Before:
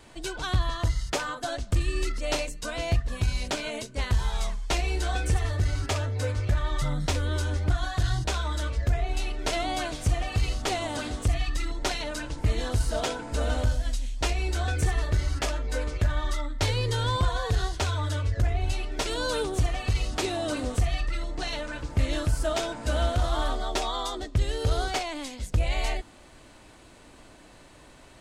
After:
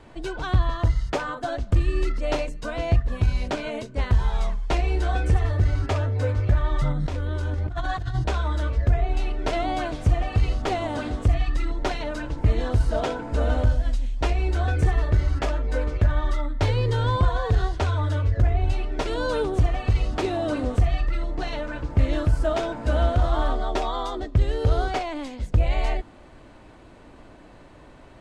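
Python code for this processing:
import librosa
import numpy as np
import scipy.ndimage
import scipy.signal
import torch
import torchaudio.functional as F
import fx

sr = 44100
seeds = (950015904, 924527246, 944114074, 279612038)

y = fx.over_compress(x, sr, threshold_db=-31.0, ratio=-1.0, at=(6.92, 8.15))
y = fx.lowpass(y, sr, hz=1300.0, slope=6)
y = F.gain(torch.from_numpy(y), 5.0).numpy()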